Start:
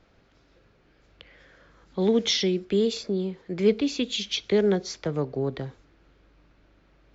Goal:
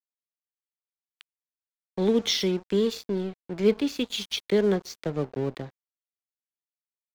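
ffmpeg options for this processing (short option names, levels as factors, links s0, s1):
-af "aeval=exprs='sgn(val(0))*max(abs(val(0))-0.0106,0)':c=same"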